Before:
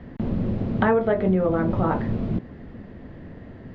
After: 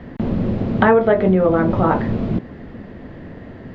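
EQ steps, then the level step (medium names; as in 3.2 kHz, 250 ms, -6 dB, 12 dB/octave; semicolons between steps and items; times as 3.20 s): bass shelf 190 Hz -5 dB; +7.5 dB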